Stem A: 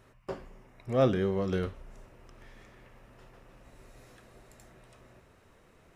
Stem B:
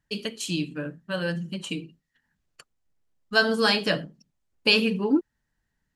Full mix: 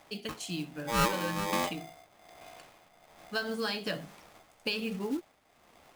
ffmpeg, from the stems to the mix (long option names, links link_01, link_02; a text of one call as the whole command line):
ffmpeg -i stem1.wav -i stem2.wav -filter_complex "[0:a]tremolo=f=1.2:d=0.64,asoftclip=type=tanh:threshold=-18dB,aeval=exprs='val(0)*sgn(sin(2*PI*700*n/s))':channel_layout=same,volume=1dB[link_01];[1:a]acompressor=threshold=-21dB:ratio=6,acrusher=bits=5:mode=log:mix=0:aa=0.000001,volume=-8dB[link_02];[link_01][link_02]amix=inputs=2:normalize=0" out.wav